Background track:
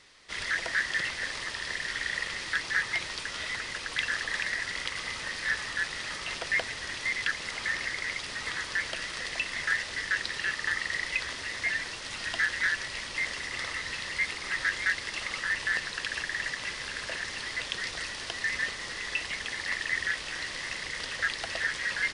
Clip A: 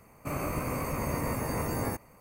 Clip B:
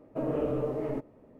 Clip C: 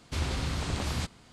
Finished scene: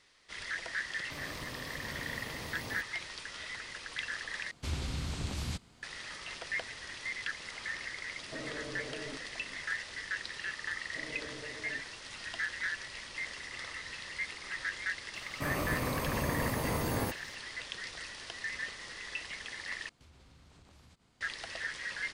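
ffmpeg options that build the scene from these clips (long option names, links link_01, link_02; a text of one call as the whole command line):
ffmpeg -i bed.wav -i cue0.wav -i cue1.wav -i cue2.wav -filter_complex "[1:a]asplit=2[link_01][link_02];[3:a]asplit=2[link_03][link_04];[2:a]asplit=2[link_05][link_06];[0:a]volume=-8dB[link_07];[link_03]acrossover=split=330|2000[link_08][link_09][link_10];[link_09]acompressor=threshold=-47dB:ratio=2:attack=28:release=759:knee=2.83:detection=peak[link_11];[link_08][link_11][link_10]amix=inputs=3:normalize=0[link_12];[link_05]acompressor=threshold=-38dB:ratio=6:attack=3.2:release=140:knee=1:detection=peak[link_13];[link_04]acompressor=threshold=-44dB:ratio=6:attack=3.2:release=140:knee=1:detection=peak[link_14];[link_07]asplit=3[link_15][link_16][link_17];[link_15]atrim=end=4.514[link_18];[link_12]atrim=end=1.32,asetpts=PTS-STARTPTS,volume=-4.5dB[link_19];[link_16]atrim=start=5.826:end=19.894[link_20];[link_14]atrim=end=1.32,asetpts=PTS-STARTPTS,volume=-13dB[link_21];[link_17]atrim=start=21.206[link_22];[link_01]atrim=end=2.2,asetpts=PTS-STARTPTS,volume=-13dB,afade=type=in:duration=0.004:curve=hsin,afade=type=out:start_time=2.196:duration=0.004:curve=hsin,adelay=850[link_23];[link_13]atrim=end=1.39,asetpts=PTS-STARTPTS,volume=-2.5dB,afade=type=in:duration=0.004:curve=hsin,afade=type=out:start_time=1.386:duration=0.004:curve=hsin,adelay=8170[link_24];[link_06]atrim=end=1.39,asetpts=PTS-STARTPTS,volume=-17.5dB,afade=type=in:duration=0.004:curve=hsin,afade=type=out:start_time=1.386:duration=0.004:curve=hsin,adelay=10800[link_25];[link_02]atrim=end=2.2,asetpts=PTS-STARTPTS,volume=-1.5dB,afade=type=in:duration=0.004:curve=hsin,afade=type=out:start_time=2.196:duration=0.004:curve=hsin,adelay=15150[link_26];[link_18][link_19]acrossfade=duration=0.004:curve1=hsin:curve2=hsin[link_27];[link_27][link_20]acrossfade=duration=0.004:curve1=hsin:curve2=hsin[link_28];[link_28][link_21]acrossfade=duration=0.004:curve1=hsin:curve2=hsin[link_29];[link_29][link_22]acrossfade=duration=0.004:curve1=hsin:curve2=hsin[link_30];[link_30][link_23][link_24][link_25][link_26]amix=inputs=5:normalize=0" out.wav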